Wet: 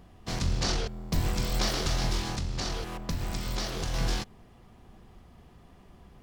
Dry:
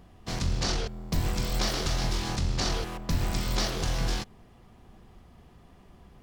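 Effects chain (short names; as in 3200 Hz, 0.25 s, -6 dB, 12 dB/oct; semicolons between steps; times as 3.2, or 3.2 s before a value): 2.2–3.94 compressor 2.5:1, threshold -30 dBFS, peak gain reduction 6.5 dB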